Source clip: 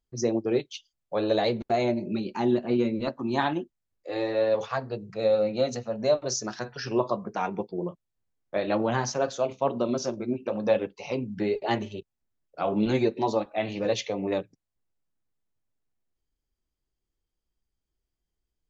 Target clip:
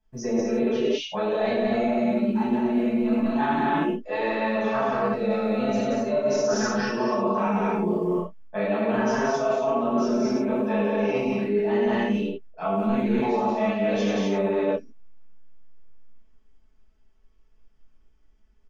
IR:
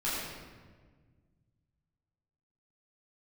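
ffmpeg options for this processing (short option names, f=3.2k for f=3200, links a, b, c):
-filter_complex "[0:a]lowpass=f=5.7k:w=0.5412,lowpass=f=5.7k:w=1.3066,aecho=1:1:4.6:0.89,aecho=1:1:177.8|236.2:0.708|0.631,acrossover=split=140|2100[a][b][c];[a]acrusher=bits=5:mode=log:mix=0:aa=0.000001[d];[d][b][c]amix=inputs=3:normalize=0,equalizer=f=4.2k:t=o:w=0.45:g=-12.5[e];[1:a]atrim=start_sample=2205,afade=t=out:st=0.19:d=0.01,atrim=end_sample=8820[f];[e][f]afir=irnorm=-1:irlink=0,areverse,acompressor=threshold=-27dB:ratio=6,areverse,volume=5.5dB"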